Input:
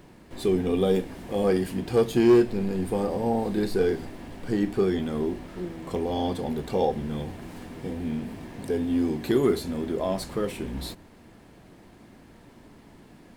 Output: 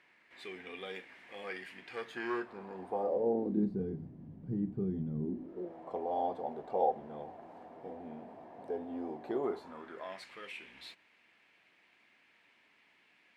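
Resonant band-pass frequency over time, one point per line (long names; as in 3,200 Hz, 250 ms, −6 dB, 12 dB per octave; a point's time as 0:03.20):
resonant band-pass, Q 2.9
0:01.90 2,100 Hz
0:03.01 710 Hz
0:03.83 150 Hz
0:05.19 150 Hz
0:05.76 710 Hz
0:09.42 710 Hz
0:10.30 2,400 Hz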